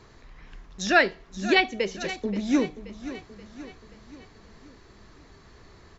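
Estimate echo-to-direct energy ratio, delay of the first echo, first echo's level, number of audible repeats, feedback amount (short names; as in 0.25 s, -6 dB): -12.5 dB, 0.529 s, -14.0 dB, 4, 52%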